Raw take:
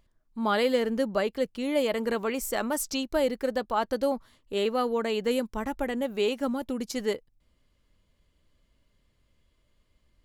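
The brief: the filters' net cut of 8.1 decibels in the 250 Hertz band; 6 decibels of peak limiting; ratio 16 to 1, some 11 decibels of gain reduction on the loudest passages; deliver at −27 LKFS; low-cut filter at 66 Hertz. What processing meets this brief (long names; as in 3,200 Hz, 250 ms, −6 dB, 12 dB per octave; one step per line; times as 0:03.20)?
high-pass filter 66 Hz
parametric band 250 Hz −9 dB
downward compressor 16 to 1, threshold −33 dBFS
level +12.5 dB
brickwall limiter −16.5 dBFS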